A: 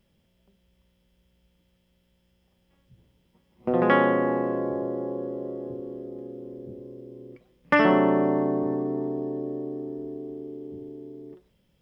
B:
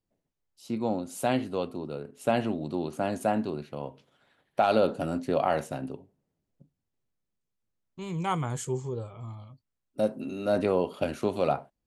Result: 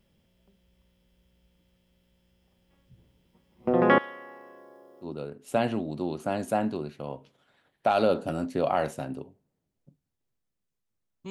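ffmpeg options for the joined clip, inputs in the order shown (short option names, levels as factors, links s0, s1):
-filter_complex "[0:a]asettb=1/sr,asplit=3[s0][s1][s2];[s0]atrim=end=3.984[s3];[s1]atrim=start=3.98:end=5.08,asetpts=PTS-STARTPTS,afade=t=in:d=0.004:c=qsin,afade=t=out:st=1.096:d=0.004:c=qsin,aderivative[s4];[s2]atrim=start=5.076[s5];[s3][s4]acrossfade=d=0.004:c1=hsin:c2=qsin[s6];[s6][s5]acrossfade=d=0.004:c1=qsin:c2=hsin,apad=whole_dur=11.3,atrim=end=11.3,atrim=end=5.08,asetpts=PTS-STARTPTS[s7];[1:a]atrim=start=1.73:end=8.03,asetpts=PTS-STARTPTS[s8];[s7][s8]acrossfade=d=0.08:c1=tri:c2=tri"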